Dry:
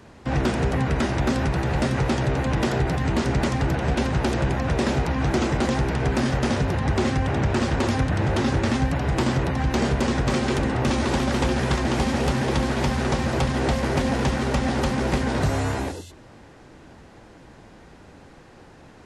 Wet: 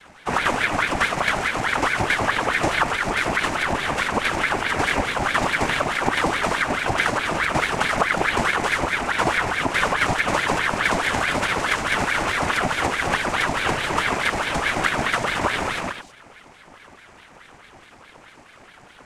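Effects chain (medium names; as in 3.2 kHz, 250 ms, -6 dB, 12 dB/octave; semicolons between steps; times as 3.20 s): tone controls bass +1 dB, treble -8 dB; noise-vocoded speech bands 3; ring modulator with a swept carrier 1.2 kHz, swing 65%, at 4.7 Hz; trim +4 dB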